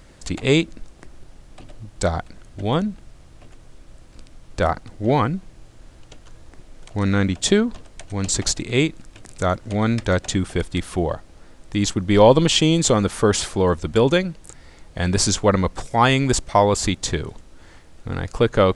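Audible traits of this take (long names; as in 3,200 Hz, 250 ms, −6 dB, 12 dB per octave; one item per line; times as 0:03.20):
background noise floor −47 dBFS
spectral slope −4.5 dB per octave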